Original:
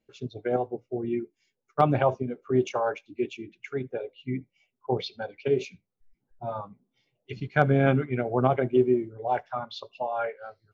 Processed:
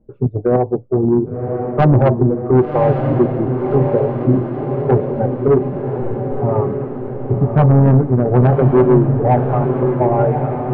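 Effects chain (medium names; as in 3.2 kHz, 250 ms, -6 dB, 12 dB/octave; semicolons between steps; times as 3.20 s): low-pass 1.1 kHz 24 dB/octave; tilt EQ -3.5 dB/octave; band-stop 690 Hz, Q 20; in parallel at -0.5 dB: compression, threshold -29 dBFS, peak gain reduction 18 dB; on the sum: saturation -14 dBFS, distortion -10 dB; on a send: echo that smears into a reverb 1101 ms, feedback 60%, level -5 dB; on the sum: trim +8 dB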